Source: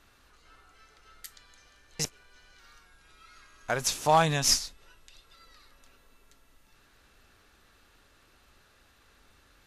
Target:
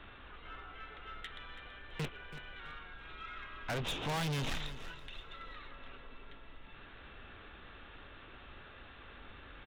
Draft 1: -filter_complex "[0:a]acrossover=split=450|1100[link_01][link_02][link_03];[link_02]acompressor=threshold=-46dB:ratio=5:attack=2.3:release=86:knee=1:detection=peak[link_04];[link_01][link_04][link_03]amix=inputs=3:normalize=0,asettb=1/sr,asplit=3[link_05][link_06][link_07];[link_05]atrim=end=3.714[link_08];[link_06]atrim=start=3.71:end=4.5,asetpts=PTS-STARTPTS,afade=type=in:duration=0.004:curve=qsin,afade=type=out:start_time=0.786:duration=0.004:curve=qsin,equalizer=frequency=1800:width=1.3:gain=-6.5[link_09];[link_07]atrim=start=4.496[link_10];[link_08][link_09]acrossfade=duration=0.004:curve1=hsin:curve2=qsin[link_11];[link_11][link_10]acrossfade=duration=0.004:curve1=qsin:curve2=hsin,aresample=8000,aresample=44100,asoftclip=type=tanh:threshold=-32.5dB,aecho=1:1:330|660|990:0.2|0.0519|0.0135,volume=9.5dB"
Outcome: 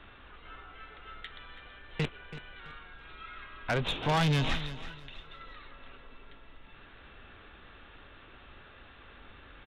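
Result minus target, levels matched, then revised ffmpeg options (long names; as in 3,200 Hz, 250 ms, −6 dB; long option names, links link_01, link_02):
soft clipping: distortion −6 dB
-filter_complex "[0:a]acrossover=split=450|1100[link_01][link_02][link_03];[link_02]acompressor=threshold=-46dB:ratio=5:attack=2.3:release=86:knee=1:detection=peak[link_04];[link_01][link_04][link_03]amix=inputs=3:normalize=0,asettb=1/sr,asplit=3[link_05][link_06][link_07];[link_05]atrim=end=3.714[link_08];[link_06]atrim=start=3.71:end=4.5,asetpts=PTS-STARTPTS,afade=type=in:duration=0.004:curve=qsin,afade=type=out:start_time=0.786:duration=0.004:curve=qsin,equalizer=frequency=1800:width=1.3:gain=-6.5[link_09];[link_07]atrim=start=4.496[link_10];[link_08][link_09]acrossfade=duration=0.004:curve1=hsin:curve2=qsin[link_11];[link_11][link_10]acrossfade=duration=0.004:curve1=qsin:curve2=hsin,aresample=8000,aresample=44100,asoftclip=type=tanh:threshold=-43dB,aecho=1:1:330|660|990:0.2|0.0519|0.0135,volume=9.5dB"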